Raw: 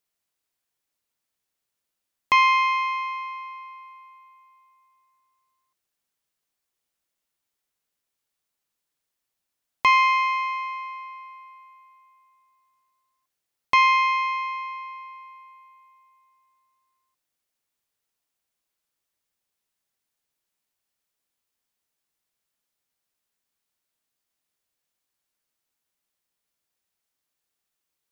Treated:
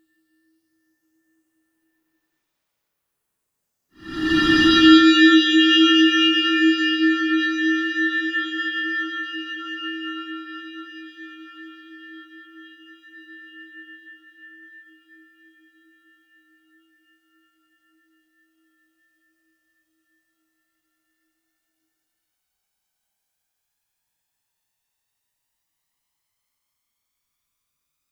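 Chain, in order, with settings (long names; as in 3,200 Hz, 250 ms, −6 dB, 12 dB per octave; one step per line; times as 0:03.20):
ring modulation 730 Hz
phase shifter 0.15 Hz, delay 1.6 ms, feedback 53%
extreme stretch with random phases 5.1×, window 0.25 s, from 0:12.84
level +6 dB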